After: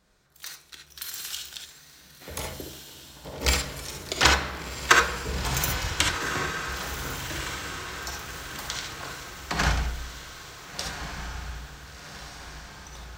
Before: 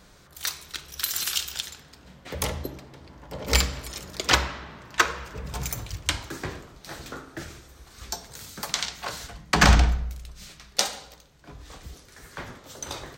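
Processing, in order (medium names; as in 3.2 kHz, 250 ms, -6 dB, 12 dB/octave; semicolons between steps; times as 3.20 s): Doppler pass-by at 5.29 s, 7 m/s, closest 7.5 m; in parallel at -8 dB: small samples zeroed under -49.5 dBFS; on the sum: echo that smears into a reverb 1470 ms, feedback 54%, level -8 dB; gated-style reverb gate 90 ms rising, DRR 2 dB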